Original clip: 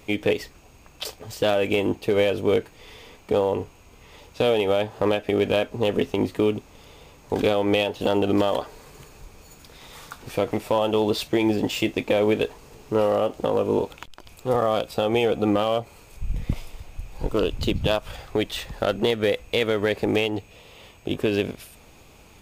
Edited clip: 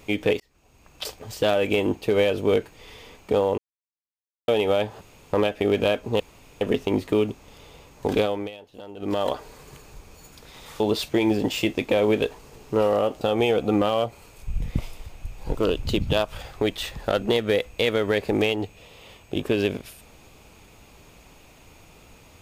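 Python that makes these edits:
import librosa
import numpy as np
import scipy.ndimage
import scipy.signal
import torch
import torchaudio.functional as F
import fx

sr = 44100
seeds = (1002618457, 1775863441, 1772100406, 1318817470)

y = fx.edit(x, sr, fx.fade_in_span(start_s=0.4, length_s=0.68),
    fx.silence(start_s=3.58, length_s=0.9),
    fx.insert_room_tone(at_s=5.01, length_s=0.32),
    fx.insert_room_tone(at_s=5.88, length_s=0.41),
    fx.fade_down_up(start_s=7.45, length_s=1.11, db=-19.0, fade_s=0.33),
    fx.cut(start_s=10.07, length_s=0.92),
    fx.cut(start_s=13.4, length_s=1.55), tone=tone)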